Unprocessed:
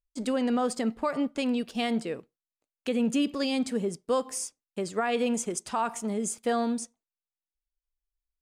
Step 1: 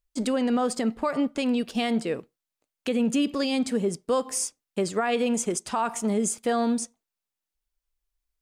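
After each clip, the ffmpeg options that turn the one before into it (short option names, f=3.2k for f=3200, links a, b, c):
-af "alimiter=limit=-22.5dB:level=0:latency=1:release=243,volume=6dB"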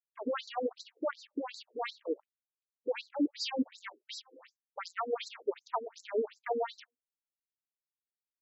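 -af "aeval=exprs='0.158*(cos(1*acos(clip(val(0)/0.158,-1,1)))-cos(1*PI/2))+0.0282*(cos(3*acos(clip(val(0)/0.158,-1,1)))-cos(3*PI/2))+0.0141*(cos(7*acos(clip(val(0)/0.158,-1,1)))-cos(7*PI/2))+0.00501*(cos(8*acos(clip(val(0)/0.158,-1,1)))-cos(8*PI/2))':c=same,afftfilt=real='re*between(b*sr/1024,350*pow(5600/350,0.5+0.5*sin(2*PI*2.7*pts/sr))/1.41,350*pow(5600/350,0.5+0.5*sin(2*PI*2.7*pts/sr))*1.41)':imag='im*between(b*sr/1024,350*pow(5600/350,0.5+0.5*sin(2*PI*2.7*pts/sr))/1.41,350*pow(5600/350,0.5+0.5*sin(2*PI*2.7*pts/sr))*1.41)':win_size=1024:overlap=0.75"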